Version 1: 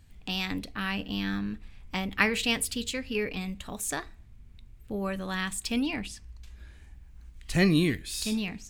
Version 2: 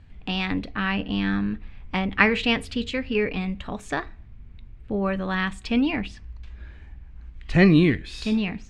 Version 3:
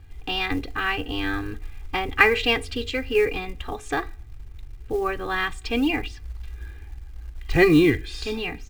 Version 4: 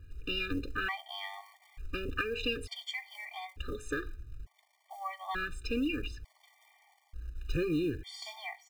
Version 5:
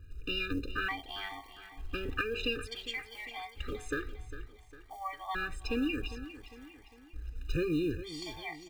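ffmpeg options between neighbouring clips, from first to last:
ffmpeg -i in.wav -af "lowpass=2700,volume=7dB" out.wav
ffmpeg -i in.wav -af "aecho=1:1:2.5:0.99,acrusher=bits=7:mode=log:mix=0:aa=0.000001,volume=-1dB" out.wav
ffmpeg -i in.wav -af "acompressor=threshold=-23dB:ratio=10,afftfilt=real='re*gt(sin(2*PI*0.56*pts/sr)*(1-2*mod(floor(b*sr/1024/600),2)),0)':imag='im*gt(sin(2*PI*0.56*pts/sr)*(1-2*mod(floor(b*sr/1024/600),2)),0)':win_size=1024:overlap=0.75,volume=-4.5dB" out.wav
ffmpeg -i in.wav -af "aecho=1:1:403|806|1209|1612:0.2|0.0938|0.0441|0.0207" out.wav

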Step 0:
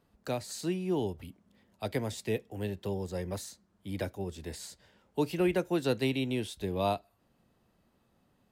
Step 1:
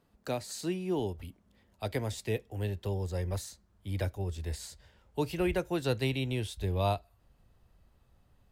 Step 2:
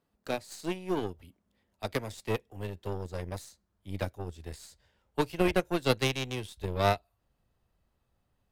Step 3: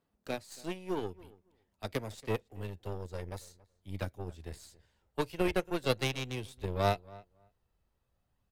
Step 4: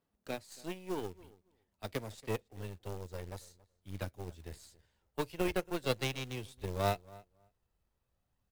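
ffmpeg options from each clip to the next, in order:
ffmpeg -i in.wav -af "asubboost=boost=9:cutoff=73" out.wav
ffmpeg -i in.wav -af "lowshelf=frequency=120:gain=-6,aeval=exprs='0.119*(cos(1*acos(clip(val(0)/0.119,-1,1)))-cos(1*PI/2))+0.015*(cos(2*acos(clip(val(0)/0.119,-1,1)))-cos(2*PI/2))+0.0266*(cos(3*acos(clip(val(0)/0.119,-1,1)))-cos(3*PI/2))+0.00168*(cos(6*acos(clip(val(0)/0.119,-1,1)))-cos(6*PI/2))+0.00266*(cos(7*acos(clip(val(0)/0.119,-1,1)))-cos(7*PI/2))':channel_layout=same,volume=8.5dB" out.wav
ffmpeg -i in.wav -filter_complex "[0:a]aphaser=in_gain=1:out_gain=1:delay=2.3:decay=0.22:speed=0.45:type=sinusoidal,asplit=2[link_01][link_02];[link_02]adelay=278,lowpass=frequency=2000:poles=1,volume=-21dB,asplit=2[link_03][link_04];[link_04]adelay=278,lowpass=frequency=2000:poles=1,volume=0.15[link_05];[link_01][link_03][link_05]amix=inputs=3:normalize=0,volume=-4dB" out.wav
ffmpeg -i in.wav -af "acrusher=bits=4:mode=log:mix=0:aa=0.000001,volume=-3dB" out.wav

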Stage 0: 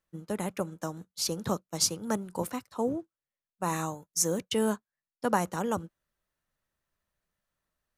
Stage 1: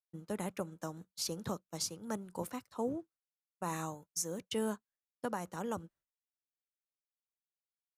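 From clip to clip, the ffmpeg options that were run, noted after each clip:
ffmpeg -i in.wav -af "agate=range=-33dB:threshold=-52dB:ratio=3:detection=peak,alimiter=limit=-18.5dB:level=0:latency=1:release=478,volume=-5.5dB" out.wav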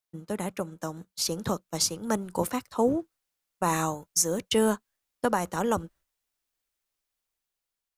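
ffmpeg -i in.wav -af "asubboost=boost=4:cutoff=62,dynaudnorm=framelen=600:gausssize=5:maxgain=6dB,volume=6.5dB" out.wav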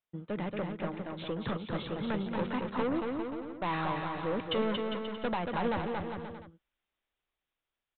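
ffmpeg -i in.wav -af "aresample=8000,asoftclip=type=tanh:threshold=-28dB,aresample=44100,aecho=1:1:230|402.5|531.9|628.9|701.7:0.631|0.398|0.251|0.158|0.1" out.wav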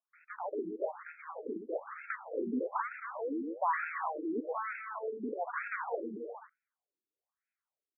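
ffmpeg -i in.wav -filter_complex "[0:a]asplit=2[link_01][link_02];[link_02]acrusher=bits=7:mix=0:aa=0.000001,volume=-3dB[link_03];[link_01][link_03]amix=inputs=2:normalize=0,afftfilt=real='re*between(b*sr/1024,300*pow(1900/300,0.5+0.5*sin(2*PI*1.1*pts/sr))/1.41,300*pow(1900/300,0.5+0.5*sin(2*PI*1.1*pts/sr))*1.41)':imag='im*between(b*sr/1024,300*pow(1900/300,0.5+0.5*sin(2*PI*1.1*pts/sr))/1.41,300*pow(1900/300,0.5+0.5*sin(2*PI*1.1*pts/sr))*1.41)':win_size=1024:overlap=0.75" out.wav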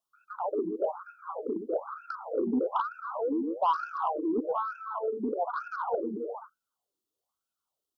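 ffmpeg -i in.wav -af "asoftclip=type=tanh:threshold=-24.5dB,asuperstop=centerf=2000:order=8:qfactor=1.4,volume=7dB" out.wav

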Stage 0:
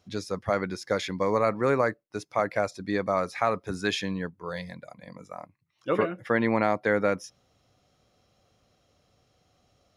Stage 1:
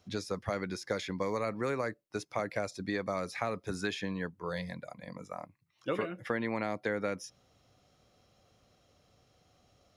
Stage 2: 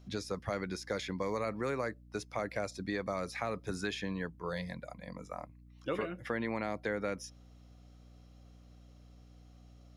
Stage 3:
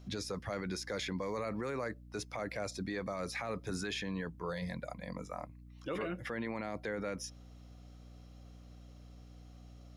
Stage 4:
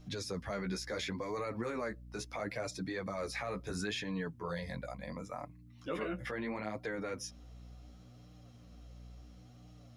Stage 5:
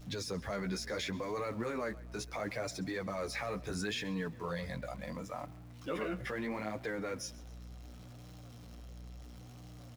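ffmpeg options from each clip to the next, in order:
ffmpeg -i in.wav -filter_complex "[0:a]acrossover=split=520|2100[link_01][link_02][link_03];[link_01]acompressor=threshold=-34dB:ratio=4[link_04];[link_02]acompressor=threshold=-39dB:ratio=4[link_05];[link_03]acompressor=threshold=-42dB:ratio=4[link_06];[link_04][link_05][link_06]amix=inputs=3:normalize=0" out.wav
ffmpeg -i in.wav -filter_complex "[0:a]asplit=2[link_01][link_02];[link_02]alimiter=level_in=1dB:limit=-24dB:level=0:latency=1,volume=-1dB,volume=-2dB[link_03];[link_01][link_03]amix=inputs=2:normalize=0,aeval=exprs='val(0)+0.00355*(sin(2*PI*60*n/s)+sin(2*PI*2*60*n/s)/2+sin(2*PI*3*60*n/s)/3+sin(2*PI*4*60*n/s)/4+sin(2*PI*5*60*n/s)/5)':channel_layout=same,volume=-6dB" out.wav
ffmpeg -i in.wav -af "alimiter=level_in=8dB:limit=-24dB:level=0:latency=1:release=16,volume=-8dB,volume=3dB" out.wav
ffmpeg -i in.wav -af "flanger=delay=6.4:depth=9.3:regen=0:speed=0.72:shape=sinusoidal,volume=3dB" out.wav
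ffmpeg -i in.wav -filter_complex "[0:a]aeval=exprs='val(0)+0.5*0.00266*sgn(val(0))':channel_layout=same,asplit=4[link_01][link_02][link_03][link_04];[link_02]adelay=133,afreqshift=39,volume=-21dB[link_05];[link_03]adelay=266,afreqshift=78,volume=-28.1dB[link_06];[link_04]adelay=399,afreqshift=117,volume=-35.3dB[link_07];[link_01][link_05][link_06][link_07]amix=inputs=4:normalize=0" out.wav

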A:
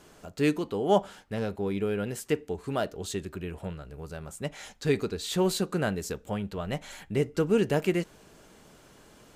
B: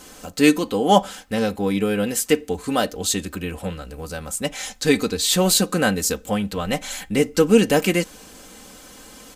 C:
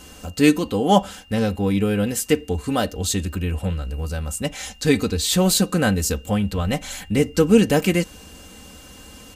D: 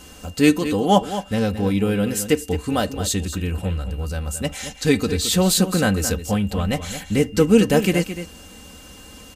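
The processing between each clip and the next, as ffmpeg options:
ffmpeg -i in.wav -af "highshelf=frequency=3600:gain=9.5,aecho=1:1:3.9:0.64,volume=7.5dB" out.wav
ffmpeg -i in.wav -af "equalizer=frequency=76:width=0.74:gain=14,aeval=exprs='val(0)+0.00447*sin(2*PI*2800*n/s)':channel_layout=same,volume=-2dB" out.wav
ffmpeg -i in.wav -af "aecho=1:1:219:0.282" out.wav

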